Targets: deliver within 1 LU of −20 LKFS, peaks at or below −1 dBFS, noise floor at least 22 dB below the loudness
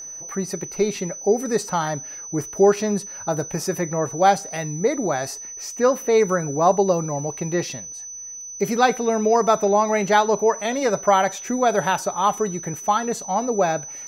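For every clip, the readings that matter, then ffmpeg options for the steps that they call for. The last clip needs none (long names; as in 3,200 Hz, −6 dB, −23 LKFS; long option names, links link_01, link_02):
interfering tone 6,000 Hz; level of the tone −33 dBFS; integrated loudness −21.5 LKFS; sample peak −3.0 dBFS; target loudness −20.0 LKFS
→ -af "bandreject=frequency=6000:width=30"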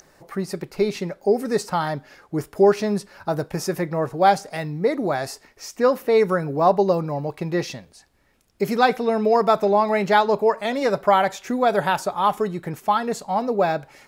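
interfering tone none found; integrated loudness −21.5 LKFS; sample peak −3.5 dBFS; target loudness −20.0 LKFS
→ -af "volume=1.5dB"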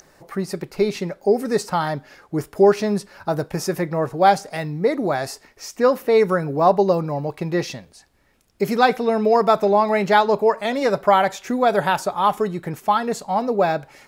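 integrated loudness −20.0 LKFS; sample peak −2.0 dBFS; background noise floor −55 dBFS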